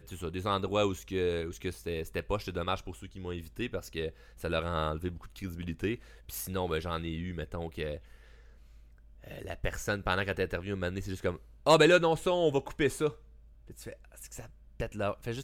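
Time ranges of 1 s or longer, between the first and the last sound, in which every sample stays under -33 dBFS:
7.96–9.31

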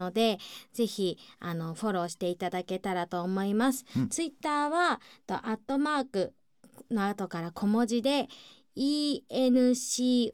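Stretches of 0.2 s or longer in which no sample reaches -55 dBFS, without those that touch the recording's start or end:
6.32–6.64

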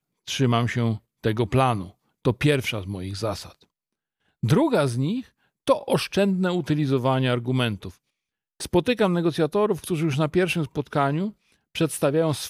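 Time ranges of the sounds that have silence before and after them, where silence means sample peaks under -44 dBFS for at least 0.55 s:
4.43–7.94

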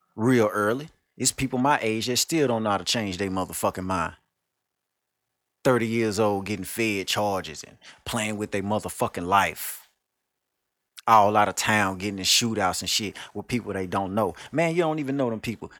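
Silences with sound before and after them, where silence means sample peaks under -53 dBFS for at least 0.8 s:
4.17–5.65
9.87–10.97

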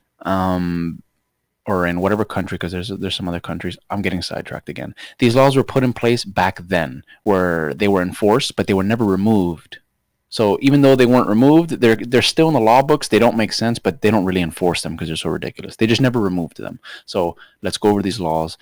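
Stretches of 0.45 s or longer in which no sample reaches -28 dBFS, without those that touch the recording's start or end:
0.97–1.68
9.74–10.33

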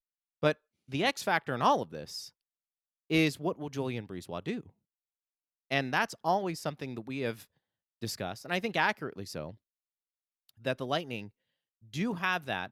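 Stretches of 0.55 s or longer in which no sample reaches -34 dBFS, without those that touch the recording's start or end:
2.2–3.11
4.59–5.71
7.33–8.03
9.49–10.66
11.22–11.95

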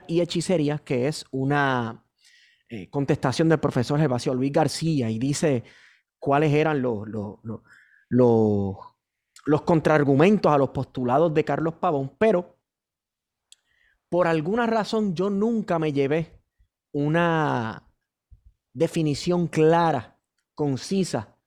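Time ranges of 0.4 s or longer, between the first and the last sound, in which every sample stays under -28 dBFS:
1.91–2.73
5.59–6.24
7.56–8.12
8.72–9.47
12.41–14.12
16.23–16.95
17.78–18.77
20–20.59

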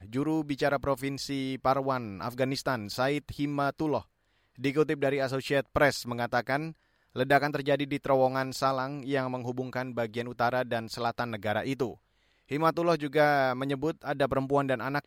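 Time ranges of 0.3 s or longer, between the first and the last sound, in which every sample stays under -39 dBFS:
4.02–4.6
6.71–7.16
11.94–12.51

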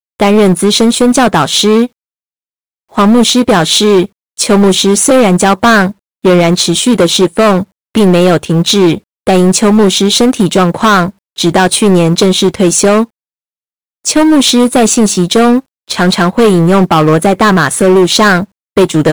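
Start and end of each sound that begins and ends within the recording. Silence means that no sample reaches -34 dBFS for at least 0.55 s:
2.92–13.06

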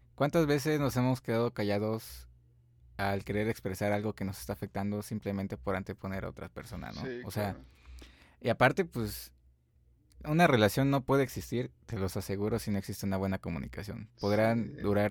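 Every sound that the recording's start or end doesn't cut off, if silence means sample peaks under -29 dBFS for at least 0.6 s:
2.99–7.51
8.45–9.1

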